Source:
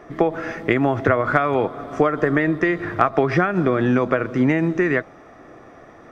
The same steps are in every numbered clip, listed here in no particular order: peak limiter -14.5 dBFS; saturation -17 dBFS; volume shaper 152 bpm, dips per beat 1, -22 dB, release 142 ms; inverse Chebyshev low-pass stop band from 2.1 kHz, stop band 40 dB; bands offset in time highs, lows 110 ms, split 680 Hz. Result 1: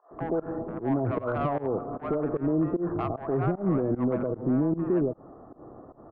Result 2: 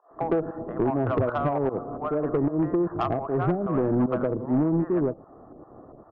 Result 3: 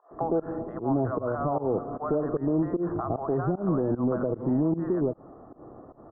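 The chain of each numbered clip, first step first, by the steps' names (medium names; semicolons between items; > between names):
inverse Chebyshev low-pass > peak limiter > saturation > bands offset in time > volume shaper; inverse Chebyshev low-pass > volume shaper > bands offset in time > saturation > peak limiter; bands offset in time > peak limiter > volume shaper > saturation > inverse Chebyshev low-pass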